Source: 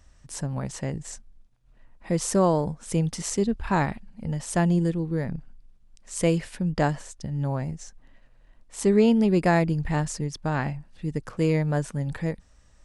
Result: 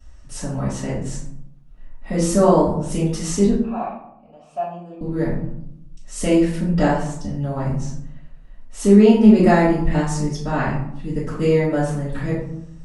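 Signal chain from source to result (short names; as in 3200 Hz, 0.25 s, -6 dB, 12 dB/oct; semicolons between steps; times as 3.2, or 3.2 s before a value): 3.55–5.01 vowel filter a; reverb RT60 0.75 s, pre-delay 3 ms, DRR -15.5 dB; gain -10 dB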